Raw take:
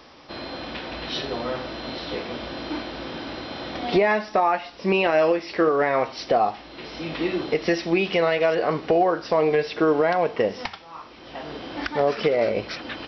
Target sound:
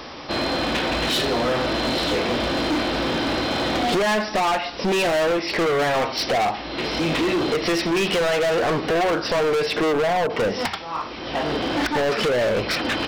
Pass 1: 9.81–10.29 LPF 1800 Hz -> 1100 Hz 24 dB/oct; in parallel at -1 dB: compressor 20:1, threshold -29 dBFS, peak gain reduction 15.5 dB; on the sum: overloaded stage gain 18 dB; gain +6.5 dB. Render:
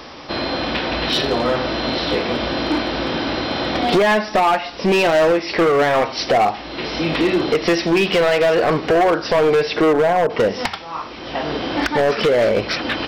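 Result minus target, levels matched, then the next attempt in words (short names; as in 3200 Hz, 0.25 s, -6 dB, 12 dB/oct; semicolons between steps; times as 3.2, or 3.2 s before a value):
overloaded stage: distortion -6 dB
9.81–10.29 LPF 1800 Hz -> 1100 Hz 24 dB/oct; in parallel at -1 dB: compressor 20:1, threshold -29 dBFS, peak gain reduction 15.5 dB; on the sum: overloaded stage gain 25 dB; gain +6.5 dB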